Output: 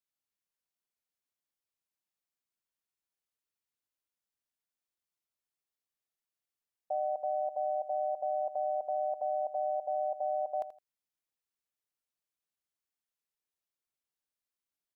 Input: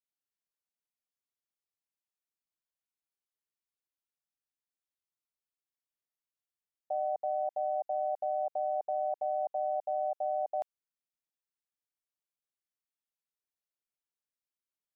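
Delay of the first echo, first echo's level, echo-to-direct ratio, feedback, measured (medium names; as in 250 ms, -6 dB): 82 ms, -13.0 dB, -13.0 dB, 21%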